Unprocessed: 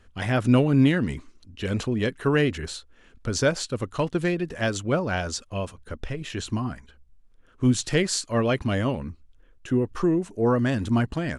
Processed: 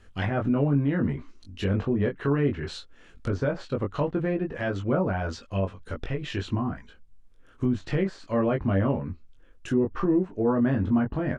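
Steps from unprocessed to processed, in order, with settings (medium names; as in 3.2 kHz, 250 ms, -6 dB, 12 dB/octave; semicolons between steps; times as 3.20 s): peak limiter -17.5 dBFS, peak gain reduction 9 dB; low-pass that closes with the level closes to 1.4 kHz, closed at -24.5 dBFS; doubling 21 ms -3.5 dB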